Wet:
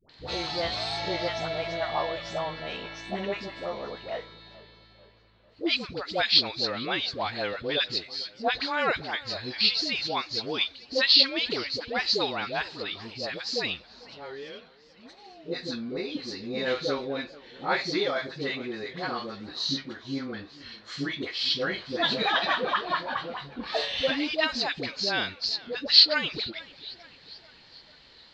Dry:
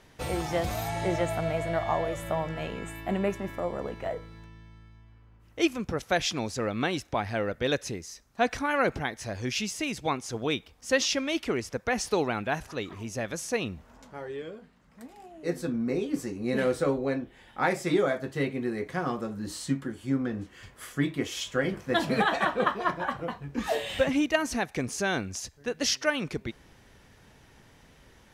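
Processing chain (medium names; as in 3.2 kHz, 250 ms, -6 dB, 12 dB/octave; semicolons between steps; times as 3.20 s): knee-point frequency compression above 3.3 kHz 1.5:1; resonant low-pass 4.2 kHz, resonance Q 9.5; bass shelf 300 Hz -9.5 dB; phase dispersion highs, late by 94 ms, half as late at 660 Hz; modulated delay 444 ms, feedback 54%, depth 151 cents, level -20.5 dB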